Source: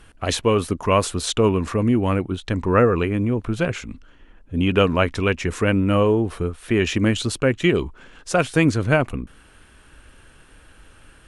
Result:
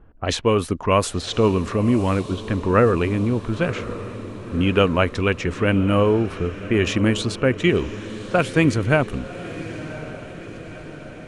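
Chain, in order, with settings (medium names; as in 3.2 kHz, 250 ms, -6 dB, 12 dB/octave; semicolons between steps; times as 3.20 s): level-controlled noise filter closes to 750 Hz, open at -16 dBFS; echo that smears into a reverb 1054 ms, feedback 59%, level -14 dB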